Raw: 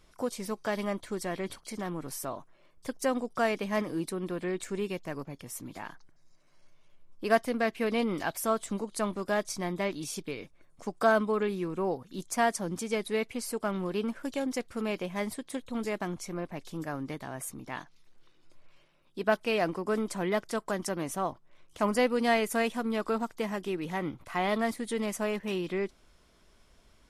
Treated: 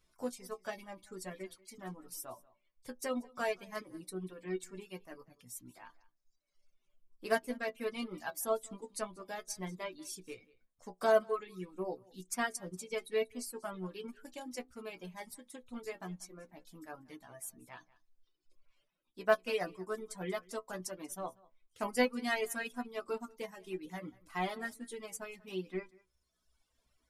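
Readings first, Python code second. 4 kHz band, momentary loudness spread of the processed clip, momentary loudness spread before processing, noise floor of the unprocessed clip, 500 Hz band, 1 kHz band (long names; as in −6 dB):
−6.5 dB, 17 LU, 12 LU, −62 dBFS, −6.5 dB, −8.0 dB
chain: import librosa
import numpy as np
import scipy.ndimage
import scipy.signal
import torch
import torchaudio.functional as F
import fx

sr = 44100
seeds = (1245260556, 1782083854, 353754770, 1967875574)

p1 = fx.high_shelf(x, sr, hz=5300.0, db=6.5)
p2 = fx.stiff_resonator(p1, sr, f0_hz=60.0, decay_s=0.25, stiffness=0.002)
p3 = fx.dereverb_blind(p2, sr, rt60_s=1.4)
p4 = p3 + fx.echo_single(p3, sr, ms=188, db=-20.0, dry=0)
p5 = fx.upward_expand(p4, sr, threshold_db=-45.0, expansion=1.5)
y = p5 * librosa.db_to_amplitude(3.5)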